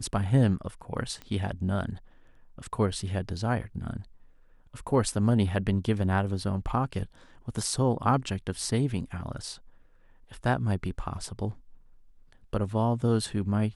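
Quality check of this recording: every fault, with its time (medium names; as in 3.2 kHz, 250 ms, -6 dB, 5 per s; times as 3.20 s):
1.22 s: pop -26 dBFS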